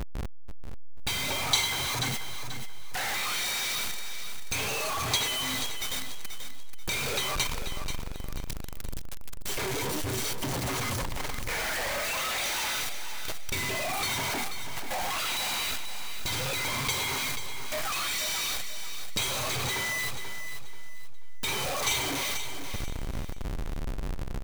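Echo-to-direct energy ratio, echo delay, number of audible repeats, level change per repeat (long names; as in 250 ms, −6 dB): −8.5 dB, 485 ms, 3, −10.5 dB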